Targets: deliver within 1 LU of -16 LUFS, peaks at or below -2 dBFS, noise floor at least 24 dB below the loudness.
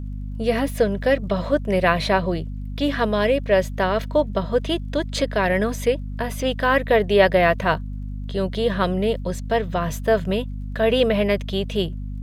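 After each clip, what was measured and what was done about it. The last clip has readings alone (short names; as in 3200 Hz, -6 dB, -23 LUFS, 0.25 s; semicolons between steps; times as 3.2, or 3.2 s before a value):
ticks 23/s; hum 50 Hz; harmonics up to 250 Hz; hum level -27 dBFS; loudness -21.5 LUFS; peak -4.5 dBFS; loudness target -16.0 LUFS
-> de-click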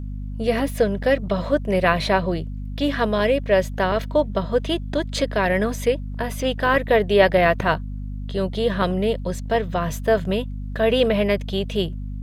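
ticks 1.6/s; hum 50 Hz; harmonics up to 250 Hz; hum level -27 dBFS
-> notches 50/100/150/200/250 Hz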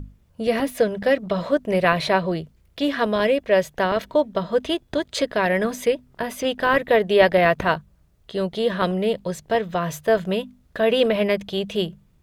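hum none; loudness -22.0 LUFS; peak -4.0 dBFS; loudness target -16.0 LUFS
-> gain +6 dB; limiter -2 dBFS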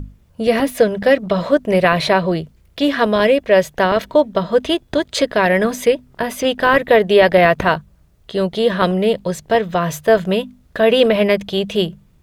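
loudness -16.5 LUFS; peak -2.0 dBFS; noise floor -53 dBFS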